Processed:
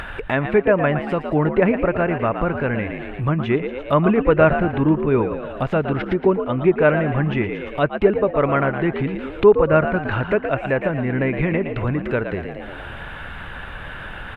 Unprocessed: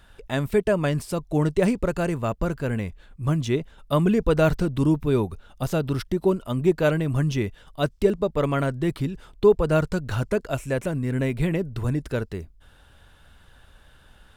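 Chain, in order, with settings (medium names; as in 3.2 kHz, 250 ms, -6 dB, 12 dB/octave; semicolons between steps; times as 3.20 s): FFT filter 100 Hz 0 dB, 2.4 kHz +10 dB, 5.5 kHz -17 dB, 11 kHz -12 dB; frequency-shifting echo 115 ms, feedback 43%, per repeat +66 Hz, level -9 dB; low-pass that closes with the level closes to 2.4 kHz, closed at -15.5 dBFS; upward compressor, threshold -18 dBFS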